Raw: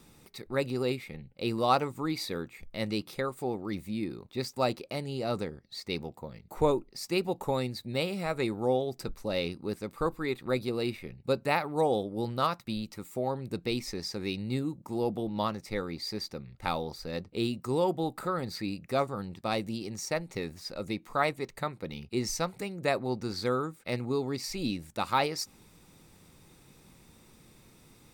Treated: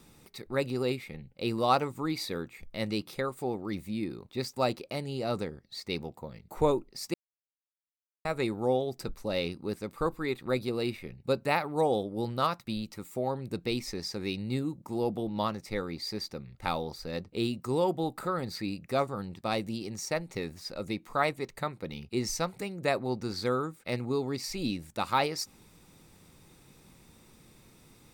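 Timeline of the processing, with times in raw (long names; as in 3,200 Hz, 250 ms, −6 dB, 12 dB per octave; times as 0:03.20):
0:07.14–0:08.25: silence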